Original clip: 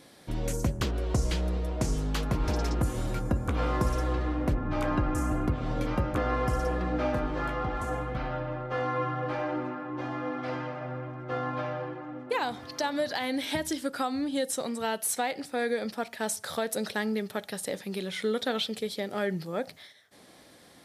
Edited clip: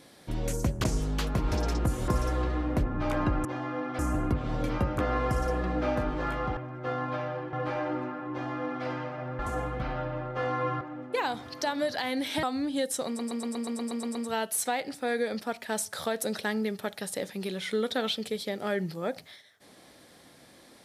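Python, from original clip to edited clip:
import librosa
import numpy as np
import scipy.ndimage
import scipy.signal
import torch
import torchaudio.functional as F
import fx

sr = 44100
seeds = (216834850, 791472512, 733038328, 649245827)

y = fx.edit(x, sr, fx.cut(start_s=0.84, length_s=0.96),
    fx.cut(start_s=3.04, length_s=0.75),
    fx.swap(start_s=7.74, length_s=1.42, other_s=11.02, other_length_s=0.96),
    fx.duplicate(start_s=9.94, length_s=0.54, to_s=5.16),
    fx.cut(start_s=13.6, length_s=0.42),
    fx.stutter(start_s=14.66, slice_s=0.12, count=10), tone=tone)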